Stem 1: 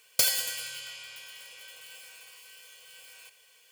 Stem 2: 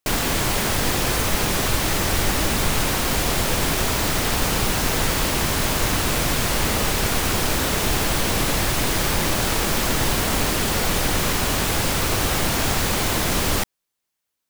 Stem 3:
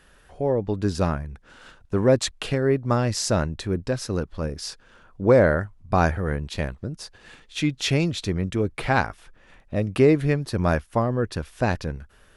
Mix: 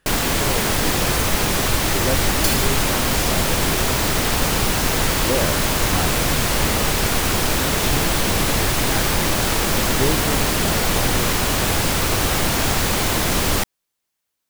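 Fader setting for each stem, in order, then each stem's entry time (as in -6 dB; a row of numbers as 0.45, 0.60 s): +0.5, +2.0, -7.5 dB; 2.25, 0.00, 0.00 s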